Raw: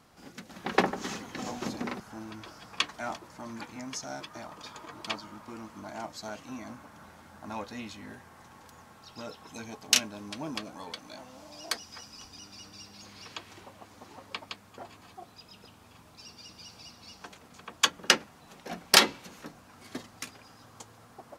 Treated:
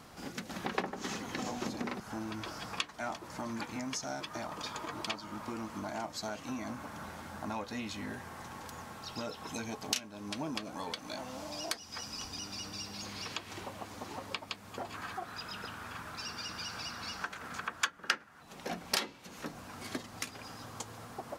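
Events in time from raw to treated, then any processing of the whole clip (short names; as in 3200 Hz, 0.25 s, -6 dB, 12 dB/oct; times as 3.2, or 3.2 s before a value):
14.94–18.43 bell 1500 Hz +13 dB 0.95 oct
whole clip: compressor 3:1, threshold -44 dBFS; gain +7 dB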